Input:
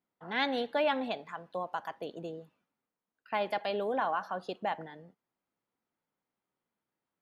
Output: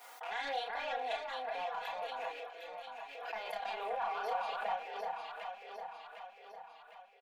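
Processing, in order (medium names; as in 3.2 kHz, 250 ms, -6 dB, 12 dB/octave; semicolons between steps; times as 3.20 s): rattle on loud lows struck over -49 dBFS, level -39 dBFS; high-pass 610 Hz 24 dB/octave; peaking EQ 790 Hz +7.5 dB 0.24 oct; peak limiter -24 dBFS, peak gain reduction 9.5 dB; saturation -26 dBFS, distortion -20 dB; chorus voices 4, 0.82 Hz, delay 30 ms, depth 2.7 ms; comb 4.2 ms, depth 96%; echo whose repeats swap between lows and highs 377 ms, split 2 kHz, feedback 72%, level -2 dB; swell ahead of each attack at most 45 dB/s; trim -3 dB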